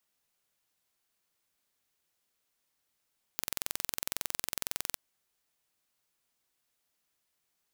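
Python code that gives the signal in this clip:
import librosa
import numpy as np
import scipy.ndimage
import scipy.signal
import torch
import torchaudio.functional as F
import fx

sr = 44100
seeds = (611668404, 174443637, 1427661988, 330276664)

y = 10.0 ** (-5.0 / 20.0) * (np.mod(np.arange(round(1.57 * sr)), round(sr / 21.9)) == 0)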